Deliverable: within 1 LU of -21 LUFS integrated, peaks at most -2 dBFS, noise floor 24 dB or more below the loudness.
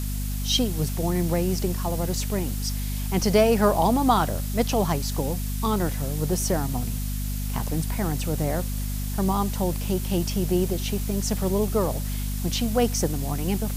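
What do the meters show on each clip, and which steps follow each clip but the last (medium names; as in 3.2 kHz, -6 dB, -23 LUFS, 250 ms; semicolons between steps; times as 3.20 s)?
hum 50 Hz; highest harmonic 250 Hz; hum level -26 dBFS; noise floor -28 dBFS; noise floor target -49 dBFS; loudness -25.0 LUFS; peak level -6.0 dBFS; loudness target -21.0 LUFS
-> hum notches 50/100/150/200/250 Hz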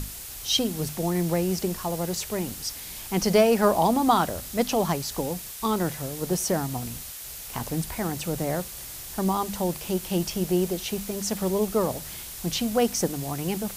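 hum not found; noise floor -39 dBFS; noise floor target -51 dBFS
-> noise print and reduce 12 dB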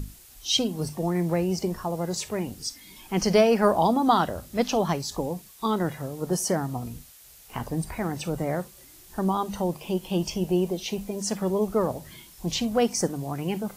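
noise floor -51 dBFS; loudness -26.5 LUFS; peak level -6.5 dBFS; loudness target -21.0 LUFS
-> trim +5.5 dB; peak limiter -2 dBFS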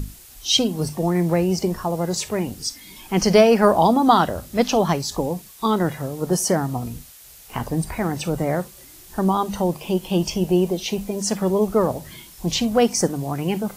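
loudness -21.0 LUFS; peak level -2.0 dBFS; noise floor -45 dBFS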